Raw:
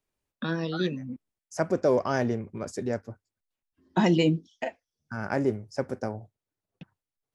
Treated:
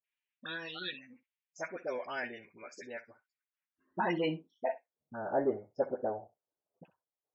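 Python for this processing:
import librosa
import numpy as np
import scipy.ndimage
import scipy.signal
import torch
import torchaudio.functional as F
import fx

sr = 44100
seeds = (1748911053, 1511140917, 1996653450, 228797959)

p1 = fx.dynamic_eq(x, sr, hz=1200.0, q=2.5, threshold_db=-47.0, ratio=4.0, max_db=-5)
p2 = fx.filter_sweep_bandpass(p1, sr, from_hz=2500.0, to_hz=630.0, start_s=3.14, end_s=4.9, q=1.5)
p3 = fx.dispersion(p2, sr, late='highs', ms=44.0, hz=840.0)
p4 = 10.0 ** (-32.0 / 20.0) * np.tanh(p3 / 10.0 ** (-32.0 / 20.0))
p5 = p3 + (p4 * librosa.db_to_amplitude(-10.5))
p6 = fx.spec_topn(p5, sr, count=64)
y = p6 + fx.room_early_taps(p6, sr, ms=(12, 64), db=(-11.5, -17.0), dry=0)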